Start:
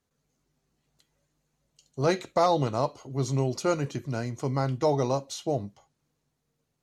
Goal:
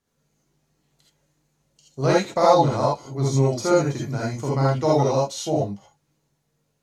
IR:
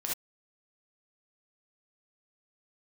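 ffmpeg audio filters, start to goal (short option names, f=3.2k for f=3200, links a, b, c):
-filter_complex "[0:a]asettb=1/sr,asplit=3[a][b][c];[a]atrim=end=2.274[d];[b]atrim=start=2.27:end=4.33,asetpts=PTS-STARTPTS,afade=t=in:d=0.004:c=qsin,afade=t=out:st=2.056:d=0.004:c=qsin,bandreject=f=2.8k:w=5.5[e];[c]atrim=start=4.326[f];[d][e]acrossfade=d=0.004:c1=hsin:c2=qsin[g];[g][f]acrossfade=d=0.004:c1=qsin:c2=hsin[h];[1:a]atrim=start_sample=2205,asetrate=40572,aresample=44100[i];[h][i]afir=irnorm=-1:irlink=0,volume=2dB"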